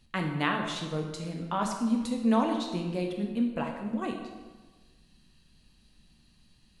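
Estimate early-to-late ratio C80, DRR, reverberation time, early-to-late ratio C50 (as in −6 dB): 6.5 dB, 2.0 dB, 1.3 s, 4.5 dB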